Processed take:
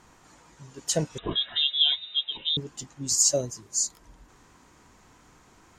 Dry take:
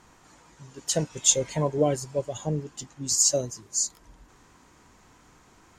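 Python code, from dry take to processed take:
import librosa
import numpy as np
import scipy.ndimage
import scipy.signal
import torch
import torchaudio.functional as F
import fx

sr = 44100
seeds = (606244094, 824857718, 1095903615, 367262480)

y = fx.freq_invert(x, sr, carrier_hz=3800, at=(1.18, 2.57))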